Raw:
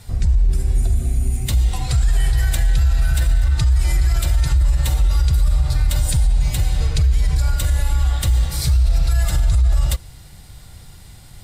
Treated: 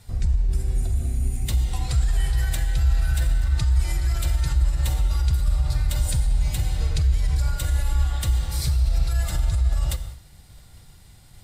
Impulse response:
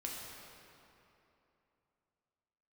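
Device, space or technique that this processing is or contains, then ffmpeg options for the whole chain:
keyed gated reverb: -filter_complex "[0:a]asplit=3[link_01][link_02][link_03];[1:a]atrim=start_sample=2205[link_04];[link_02][link_04]afir=irnorm=-1:irlink=0[link_05];[link_03]apad=whole_len=504323[link_06];[link_05][link_06]sidechaingate=range=-33dB:threshold=-36dB:ratio=16:detection=peak,volume=-5.5dB[link_07];[link_01][link_07]amix=inputs=2:normalize=0,volume=-8dB"

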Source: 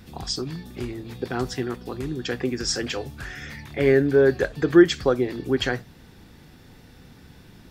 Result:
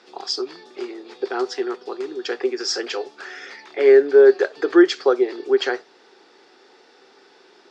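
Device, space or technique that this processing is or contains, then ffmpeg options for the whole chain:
phone speaker on a table: -af "highpass=frequency=370:width=0.5412,highpass=frequency=370:width=1.3066,equalizer=frequency=390:width_type=q:width=4:gain=10,equalizer=frequency=820:width_type=q:width=4:gain=5,equalizer=frequency=1300:width_type=q:width=4:gain=5,equalizer=frequency=4800:width_type=q:width=4:gain=5,lowpass=frequency=6700:width=0.5412,lowpass=frequency=6700:width=1.3066"

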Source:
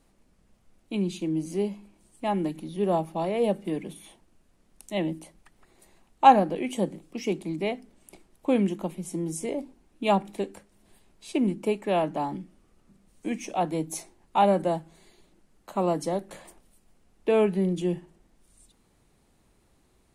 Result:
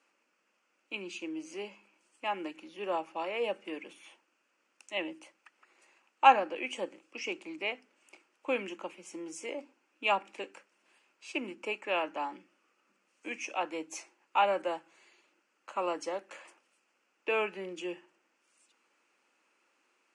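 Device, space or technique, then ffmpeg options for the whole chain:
phone speaker on a table: -af "highpass=frequency=370:width=0.5412,highpass=frequency=370:width=1.3066,equalizer=frequency=410:width_type=q:width=4:gain=-9,equalizer=frequency=690:width_type=q:width=4:gain=-9,equalizer=frequency=1400:width_type=q:width=4:gain=6,equalizer=frequency=2600:width_type=q:width=4:gain=10,equalizer=frequency=3800:width_type=q:width=4:gain=-10,lowpass=frequency=7100:width=0.5412,lowpass=frequency=7100:width=1.3066,volume=-2dB"

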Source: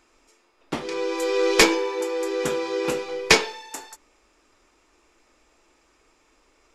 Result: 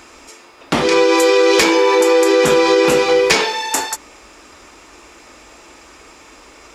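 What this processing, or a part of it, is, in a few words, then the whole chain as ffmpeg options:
loud club master: -af "highpass=49,equalizer=frequency=390:width_type=o:width=0.77:gain=-2.5,acompressor=threshold=-29dB:ratio=2,asoftclip=type=hard:threshold=-14.5dB,alimiter=level_in=23.5dB:limit=-1dB:release=50:level=0:latency=1,volume=-3dB"

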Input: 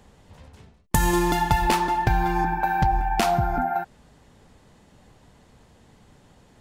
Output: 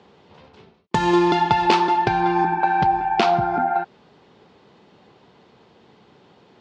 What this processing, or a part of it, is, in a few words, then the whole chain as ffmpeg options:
kitchen radio: -filter_complex "[0:a]asettb=1/sr,asplit=3[link_01][link_02][link_03];[link_01]atrim=end=1.594[link_04];[link_02]atrim=start=1.59:end=2.21,asetpts=PTS-STARTPTS,afade=type=in:duration=0.004:curve=qsin,afade=type=out:start_time=0.616:duration=0.004:curve=qsin,highshelf=frequency=7800:gain=10.5[link_05];[link_03]atrim=start=2.206[link_06];[link_04][link_05]acrossfade=duration=0.004:curve1=hsin:curve2=qsin[link_07];[link_07][link_06]acrossfade=duration=0.004:curve1=qsin:curve2=hsin,highpass=200,equalizer=frequency=260:width_type=q:width=4:gain=-4,equalizer=frequency=390:width_type=q:width=4:gain=5,equalizer=frequency=600:width_type=q:width=4:gain=-3,equalizer=frequency=1800:width_type=q:width=4:gain=-5,lowpass=frequency=4600:width=0.5412,lowpass=frequency=4600:width=1.3066,volume=5dB"

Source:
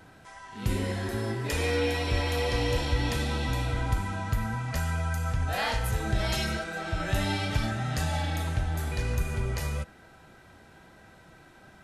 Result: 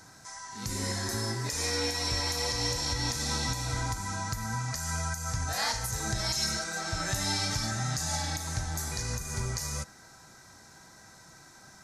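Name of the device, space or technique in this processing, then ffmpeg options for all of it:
over-bright horn tweeter: -af "highshelf=frequency=4300:width_type=q:width=3:gain=13,alimiter=limit=-16.5dB:level=0:latency=1:release=200,equalizer=frequency=125:width_type=o:width=1:gain=6,equalizer=frequency=250:width_type=o:width=1:gain=3,equalizer=frequency=1000:width_type=o:width=1:gain=8,equalizer=frequency=2000:width_type=o:width=1:gain=8,equalizer=frequency=4000:width_type=o:width=1:gain=8,volume=-7.5dB"

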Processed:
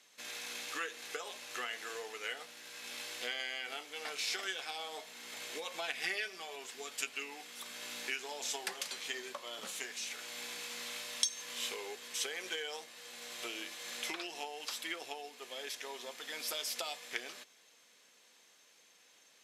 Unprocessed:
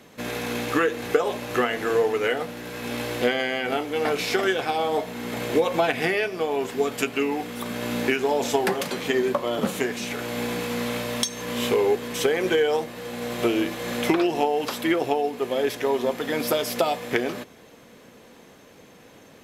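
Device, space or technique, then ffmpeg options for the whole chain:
piezo pickup straight into a mixer: -filter_complex "[0:a]lowpass=7000,aderivative,asettb=1/sr,asplit=3[link_01][link_02][link_03];[link_01]atrim=end=6.034[link_04];[link_02]atrim=start=6.03:end=6.56,asetpts=PTS-STARTPTS,afade=type=in:duration=0.004:curve=qsin,afade=type=out:start_time=0.526:duration=0.004:curve=qsin,aecho=1:1:5.2:0.74,atrim=end_sample=23373[link_05];[link_03]atrim=start=6.556[link_06];[link_04][link_05]acrossfade=duration=0.004:curve1=hsin:curve2=qsin[link_07];[link_07][link_06]acrossfade=duration=0.004:curve1=qsin:curve2=hsin,volume=-1dB"

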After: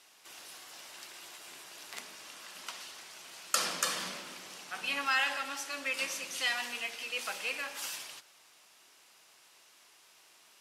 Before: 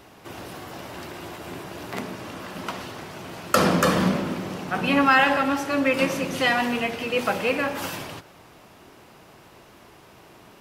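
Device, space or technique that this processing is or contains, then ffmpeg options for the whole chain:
piezo pickup straight into a mixer: -af "lowpass=8700,aderivative,volume=1.5dB"

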